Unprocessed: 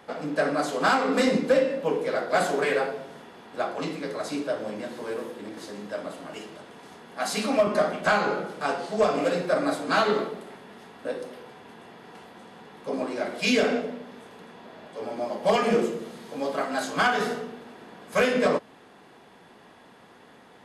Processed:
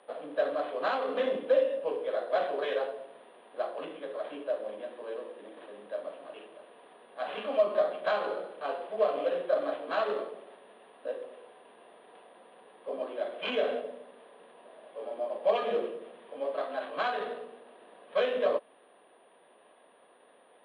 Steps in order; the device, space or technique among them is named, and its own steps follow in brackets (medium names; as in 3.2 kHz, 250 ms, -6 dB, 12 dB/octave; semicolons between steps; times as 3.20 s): toy sound module (decimation joined by straight lines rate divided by 8×; class-D stage that switches slowly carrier 9.6 kHz; cabinet simulation 550–4000 Hz, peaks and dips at 570 Hz +5 dB, 860 Hz -7 dB, 1.4 kHz -8 dB, 2.1 kHz -8 dB, 3.3 kHz +4 dB); trim -2.5 dB